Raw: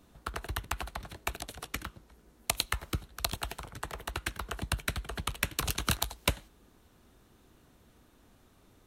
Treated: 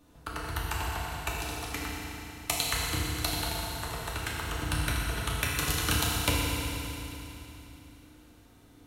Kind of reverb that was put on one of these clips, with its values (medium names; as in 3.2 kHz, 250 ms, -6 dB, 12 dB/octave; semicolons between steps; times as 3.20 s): FDN reverb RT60 3.2 s, low-frequency decay 1.25×, high-frequency decay 1×, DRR -5.5 dB; trim -2.5 dB